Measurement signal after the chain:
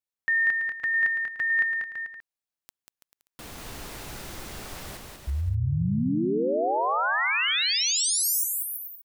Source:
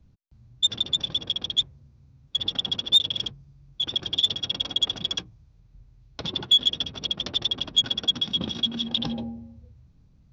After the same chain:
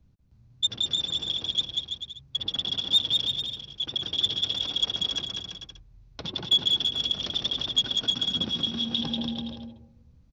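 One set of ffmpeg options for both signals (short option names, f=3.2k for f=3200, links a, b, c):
-af "aecho=1:1:190|332.5|439.4|519.5|579.6:0.631|0.398|0.251|0.158|0.1,volume=-3.5dB"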